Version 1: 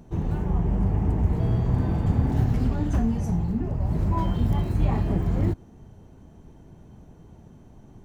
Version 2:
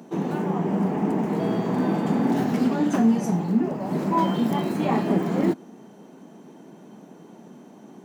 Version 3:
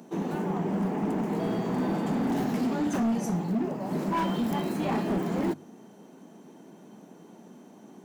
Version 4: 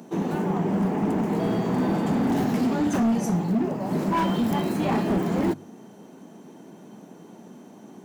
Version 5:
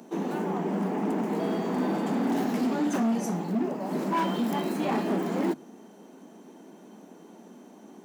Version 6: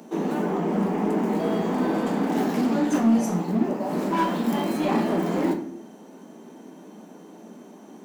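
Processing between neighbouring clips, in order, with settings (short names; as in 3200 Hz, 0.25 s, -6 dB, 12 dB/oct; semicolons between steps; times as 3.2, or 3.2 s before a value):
steep high-pass 190 Hz 36 dB/oct; gain +8 dB
high shelf 5000 Hz +4.5 dB; notches 50/100/150 Hz; hard clip -19 dBFS, distortion -13 dB; gain -4 dB
bell 95 Hz +7 dB 0.68 oct; gain +4 dB
HPF 200 Hz 24 dB/oct; gain -2.5 dB
in parallel at -9 dB: overloaded stage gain 25 dB; on the sum: reverb RT60 0.60 s, pre-delay 7 ms, DRR 4 dB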